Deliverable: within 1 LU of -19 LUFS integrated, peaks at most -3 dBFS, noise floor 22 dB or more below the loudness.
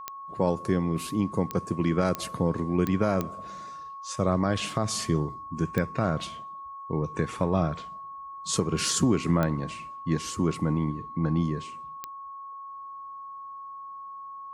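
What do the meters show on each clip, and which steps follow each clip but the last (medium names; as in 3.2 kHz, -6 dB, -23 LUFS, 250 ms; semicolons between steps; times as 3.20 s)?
clicks found 8; steady tone 1.1 kHz; tone level -38 dBFS; loudness -28.0 LUFS; peak level -9.5 dBFS; loudness target -19.0 LUFS
-> de-click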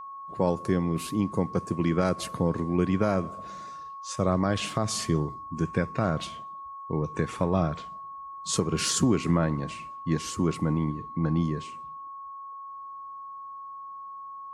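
clicks found 0; steady tone 1.1 kHz; tone level -38 dBFS
-> band-stop 1.1 kHz, Q 30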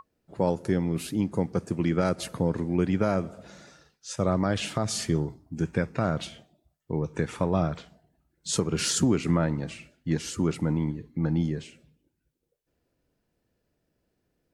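steady tone not found; loudness -28.0 LUFS; peak level -12.5 dBFS; loudness target -19.0 LUFS
-> trim +9 dB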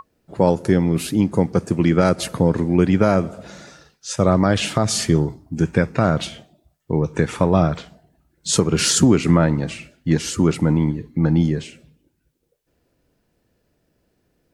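loudness -19.0 LUFS; peak level -3.5 dBFS; noise floor -69 dBFS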